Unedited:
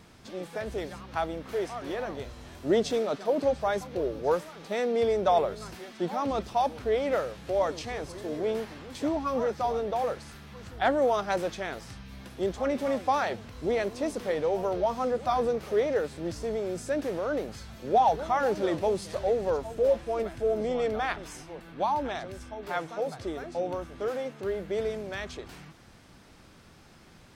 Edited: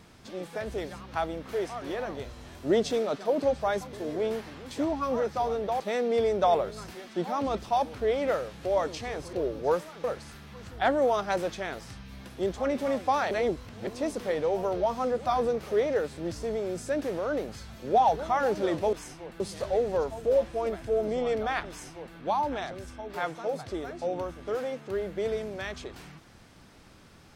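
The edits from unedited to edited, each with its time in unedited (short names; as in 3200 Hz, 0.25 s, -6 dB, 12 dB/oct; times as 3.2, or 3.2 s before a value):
3.93–4.64 swap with 8.17–10.04
13.31–13.87 reverse
21.22–21.69 copy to 18.93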